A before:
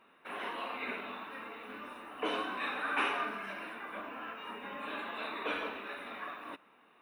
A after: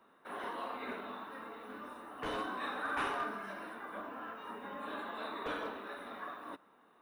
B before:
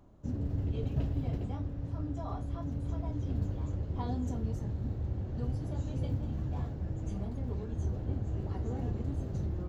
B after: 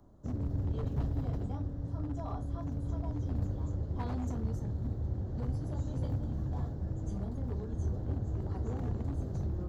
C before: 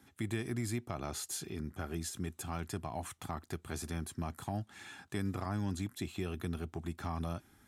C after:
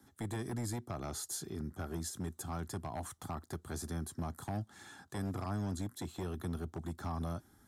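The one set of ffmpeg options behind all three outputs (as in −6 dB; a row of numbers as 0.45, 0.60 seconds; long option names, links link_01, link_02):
-filter_complex "[0:a]equalizer=frequency=2500:width_type=o:width=0.62:gain=-13.5,acrossover=split=130|1100|2100[link_01][link_02][link_03][link_04];[link_02]aeval=exprs='0.0188*(abs(mod(val(0)/0.0188+3,4)-2)-1)':channel_layout=same[link_05];[link_01][link_05][link_03][link_04]amix=inputs=4:normalize=0"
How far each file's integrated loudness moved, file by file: −3.0, −0.5, −1.0 LU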